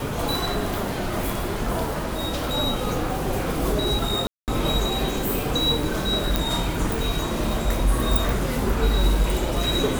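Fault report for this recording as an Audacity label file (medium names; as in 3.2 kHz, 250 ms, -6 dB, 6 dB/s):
4.270000	4.480000	dropout 208 ms
6.360000	6.360000	pop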